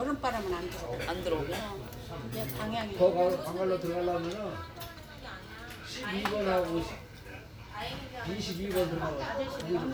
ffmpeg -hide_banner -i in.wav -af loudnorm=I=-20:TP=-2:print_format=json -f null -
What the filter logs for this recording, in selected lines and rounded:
"input_i" : "-33.6",
"input_tp" : "-13.4",
"input_lra" : "3.6",
"input_thresh" : "-44.0",